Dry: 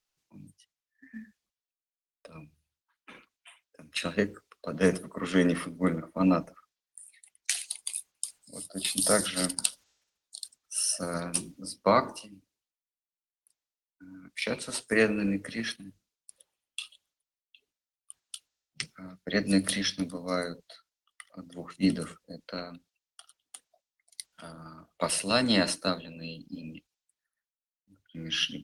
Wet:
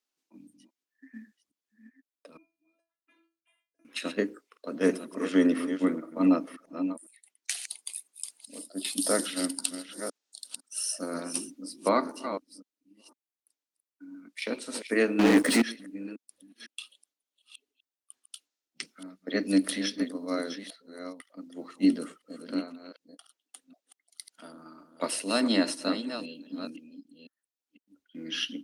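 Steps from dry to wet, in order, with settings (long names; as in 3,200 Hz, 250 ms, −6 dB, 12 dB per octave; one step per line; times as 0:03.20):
delay that plays each chunk backwards 505 ms, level −9.5 dB
0:02.37–0:03.85: stiff-string resonator 330 Hz, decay 0.33 s, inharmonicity 0.002
0:15.19–0:15.62: leveller curve on the samples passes 5
low shelf with overshoot 180 Hz −14 dB, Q 3
level −3.5 dB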